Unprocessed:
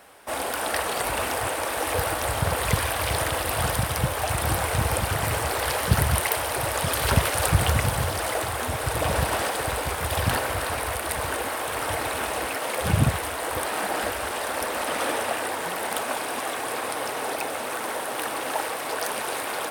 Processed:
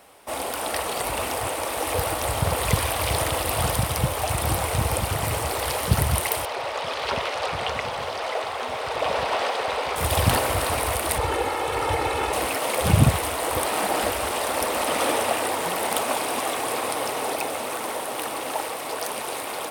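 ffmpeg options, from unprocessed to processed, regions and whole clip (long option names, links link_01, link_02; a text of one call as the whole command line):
ffmpeg -i in.wav -filter_complex "[0:a]asettb=1/sr,asplit=3[link_01][link_02][link_03];[link_01]atrim=end=6.454[link_04];[link_02]atrim=start=6.45:end=9.96,asetpts=PTS-STARTPTS,afade=type=in:duration=0.004:curve=qsin,afade=type=out:start_time=3.506:duration=0.004:curve=qsin,acrossover=split=7000[link_05][link_06];[link_06]acompressor=threshold=-41dB:ratio=4:attack=1:release=60[link_07];[link_05][link_07]amix=inputs=2:normalize=0,acrossover=split=290 5800:gain=0.112 1 0.2[link_08][link_09][link_10];[link_08][link_09][link_10]amix=inputs=3:normalize=0,bandreject=frequency=320:width=5.7[link_11];[link_03]atrim=start=9.956[link_12];[link_04][link_11]acrossfade=duration=0.004:curve1=hsin:curve2=qsin[link_13];[link_13][link_12]acrossfade=duration=0.004:curve1=qsin:curve2=hsin,asettb=1/sr,asplit=3[link_14][link_15][link_16];[link_14]atrim=end=11.184[link_17];[link_15]atrim=start=11.18:end=12.33,asetpts=PTS-STARTPTS,afade=type=in:duration=0.004:curve=qsin,afade=type=out:start_time=1.146:duration=0.004:curve=qsin,aemphasis=mode=reproduction:type=50kf,aecho=1:1:2.3:0.55,atrim=end_sample=50715[link_18];[link_16]atrim=start=12.326[link_19];[link_17][link_18]acrossfade=duration=0.004:curve1=hsin:curve2=qsin[link_20];[link_20][link_19]acrossfade=duration=0.004:curve1=qsin:curve2=hsin,equalizer=frequency=1600:width=3.4:gain=-7,dynaudnorm=framelen=260:gausssize=21:maxgain=6dB" out.wav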